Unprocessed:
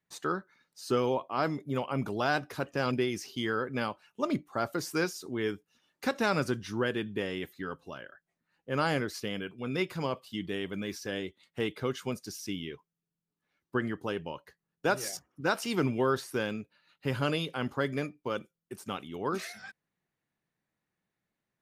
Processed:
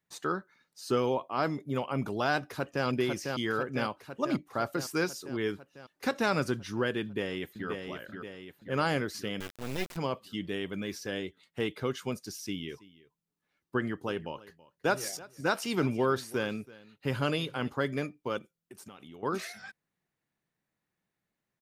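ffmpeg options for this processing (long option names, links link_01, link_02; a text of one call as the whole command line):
ffmpeg -i in.wav -filter_complex "[0:a]asplit=2[link_01][link_02];[link_02]afade=type=in:start_time=2.46:duration=0.01,afade=type=out:start_time=2.86:duration=0.01,aecho=0:1:500|1000|1500|2000|2500|3000|3500|4000|4500|5000|5500|6000:0.630957|0.44167|0.309169|0.216418|0.151493|0.106045|0.0742315|0.0519621|0.0363734|0.0254614|0.017823|0.0124761[link_03];[link_01][link_03]amix=inputs=2:normalize=0,asplit=2[link_04][link_05];[link_05]afade=type=in:start_time=7.02:duration=0.01,afade=type=out:start_time=7.69:duration=0.01,aecho=0:1:530|1060|1590|2120|2650|3180|3710:0.530884|0.291986|0.160593|0.0883259|0.0485792|0.0267186|0.0146952[link_06];[link_04][link_06]amix=inputs=2:normalize=0,asettb=1/sr,asplit=3[link_07][link_08][link_09];[link_07]atrim=end=9.404[link_10];[link_08]atrim=start=9.4:end=9.97,asetpts=PTS-STARTPTS,afade=type=in:duration=0.004:curve=qsin,afade=type=out:start_time=0.566:duration=0.004:curve=qsin,acrusher=bits=4:dc=4:mix=0:aa=0.000001[link_11];[link_09]atrim=start=9.966[link_12];[link_10][link_11]acrossfade=duration=0.004:curve1=hsin:curve2=qsin[link_13];[link_13][link_12]acrossfade=duration=0.004:curve1=qsin:curve2=hsin,asplit=3[link_14][link_15][link_16];[link_14]afade=type=out:start_time=12.68:duration=0.02[link_17];[link_15]aecho=1:1:328:0.0944,afade=type=in:start_time=12.68:duration=0.02,afade=type=out:start_time=17.68:duration=0.02[link_18];[link_16]afade=type=in:start_time=17.68:duration=0.02[link_19];[link_17][link_18][link_19]amix=inputs=3:normalize=0,asettb=1/sr,asplit=3[link_20][link_21][link_22];[link_20]atrim=end=18.384[link_23];[link_21]atrim=start=18.38:end=19.23,asetpts=PTS-STARTPTS,afade=type=in:duration=0.004:curve=qsin,afade=type=out:start_time=0.846:duration=0.004:curve=qsin,acompressor=threshold=-44dB:ratio=10:attack=3.2:release=140:knee=1:detection=peak[link_24];[link_22]atrim=start=19.226[link_25];[link_23][link_24]acrossfade=duration=0.004:curve1=hsin:curve2=qsin[link_26];[link_26][link_25]acrossfade=duration=0.004:curve1=qsin:curve2=hsin" out.wav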